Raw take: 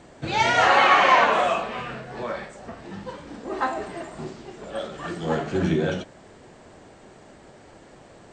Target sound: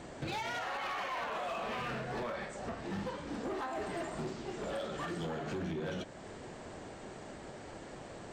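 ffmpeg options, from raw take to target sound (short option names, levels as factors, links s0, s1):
-af "acompressor=threshold=0.0501:ratio=6,alimiter=level_in=1.58:limit=0.0631:level=0:latency=1:release=388,volume=0.631,asoftclip=type=hard:threshold=0.0188,volume=1.12"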